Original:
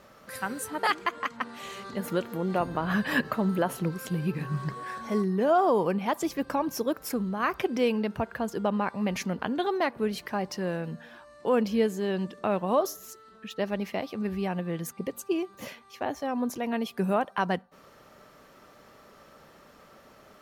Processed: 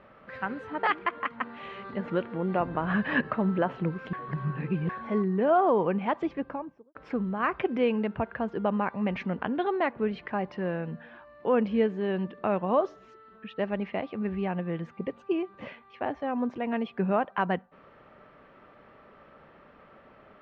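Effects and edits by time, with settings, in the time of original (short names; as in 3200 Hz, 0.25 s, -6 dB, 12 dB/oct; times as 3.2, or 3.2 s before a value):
4.13–4.89 reverse
6.15–6.95 studio fade out
whole clip: LPF 2800 Hz 24 dB/oct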